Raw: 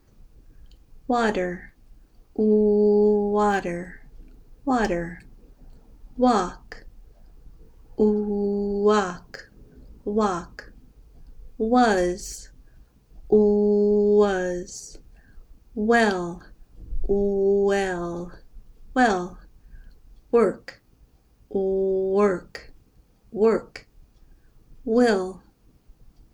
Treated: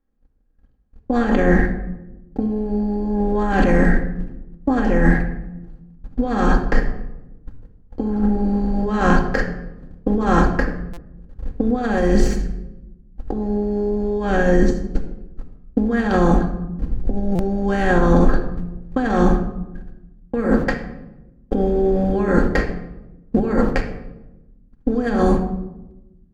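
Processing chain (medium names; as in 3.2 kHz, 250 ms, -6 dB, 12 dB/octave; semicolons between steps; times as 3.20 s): spectral levelling over time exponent 0.6; gate -29 dBFS, range -50 dB; tone controls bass +10 dB, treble -10 dB; compressor with a negative ratio -21 dBFS, ratio -1; simulated room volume 4000 m³, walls furnished, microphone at 2.2 m; buffer glitch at 10.93/17.35 s, samples 256, times 6; trim +2 dB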